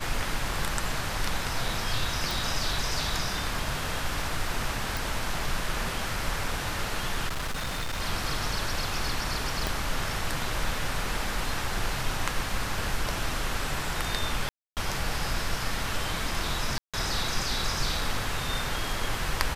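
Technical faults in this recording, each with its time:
2.31 s: pop
4.97 s: pop
7.28–8.01 s: clipped -27.5 dBFS
9.67 s: pop
14.49–14.77 s: dropout 278 ms
16.78–16.94 s: dropout 156 ms

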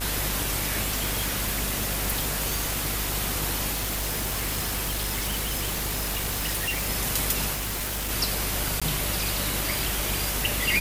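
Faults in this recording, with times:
buzz 50 Hz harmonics 33 -33 dBFS
0.81–3.16 s: clipped -21 dBFS
3.71–6.90 s: clipped -24 dBFS
7.53–8.11 s: clipped -26.5 dBFS
8.80–8.82 s: dropout 16 ms
9.79 s: pop

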